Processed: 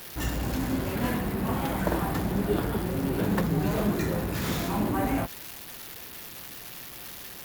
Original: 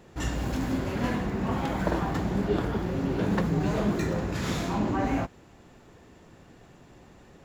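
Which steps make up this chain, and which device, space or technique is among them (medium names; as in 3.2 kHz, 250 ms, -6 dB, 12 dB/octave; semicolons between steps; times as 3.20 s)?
budget class-D amplifier (dead-time distortion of 0.063 ms; zero-crossing glitches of -24.5 dBFS)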